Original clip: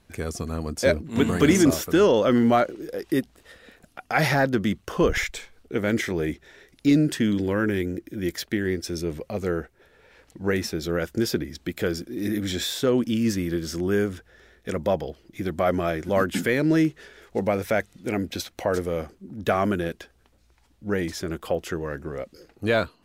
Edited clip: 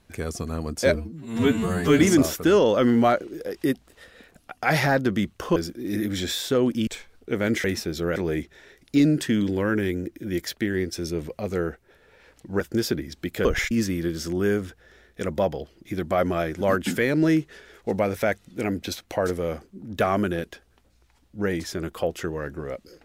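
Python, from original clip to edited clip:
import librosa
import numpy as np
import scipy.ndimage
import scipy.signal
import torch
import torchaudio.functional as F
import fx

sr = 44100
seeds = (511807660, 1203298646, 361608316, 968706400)

y = fx.edit(x, sr, fx.stretch_span(start_s=0.95, length_s=0.52, factor=2.0),
    fx.swap(start_s=5.04, length_s=0.26, other_s=11.88, other_length_s=1.31),
    fx.move(start_s=10.51, length_s=0.52, to_s=6.07), tone=tone)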